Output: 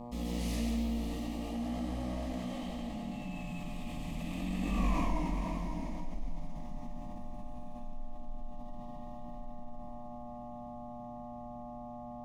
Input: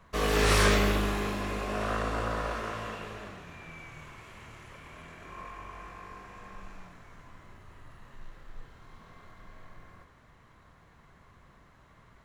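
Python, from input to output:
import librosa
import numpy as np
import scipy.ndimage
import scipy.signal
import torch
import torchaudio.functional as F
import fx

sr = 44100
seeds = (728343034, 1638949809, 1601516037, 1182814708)

y = fx.doppler_pass(x, sr, speed_mps=39, closest_m=4.3, pass_at_s=4.88)
y = fx.low_shelf_res(y, sr, hz=410.0, db=11.0, q=1.5)
y = fx.dmg_buzz(y, sr, base_hz=120.0, harmonics=10, level_db=-68.0, tilt_db=-5, odd_only=False)
y = fx.fixed_phaser(y, sr, hz=390.0, stages=6)
y = y + 10.0 ** (-15.5 / 20.0) * np.pad(y, (int(532 * sr / 1000.0), 0))[:len(y)]
y = fx.rev_freeverb(y, sr, rt60_s=0.47, hf_ratio=0.45, predelay_ms=100, drr_db=2.0)
y = fx.env_flatten(y, sr, amount_pct=50)
y = F.gain(torch.from_numpy(y), 10.5).numpy()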